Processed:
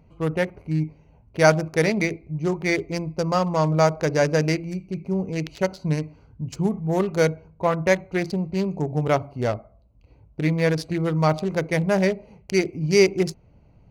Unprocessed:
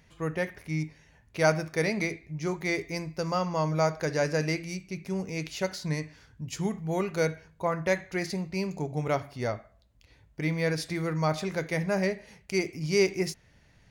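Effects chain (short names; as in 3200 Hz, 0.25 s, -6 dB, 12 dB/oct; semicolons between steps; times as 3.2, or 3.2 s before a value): Wiener smoothing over 25 samples; gain +7.5 dB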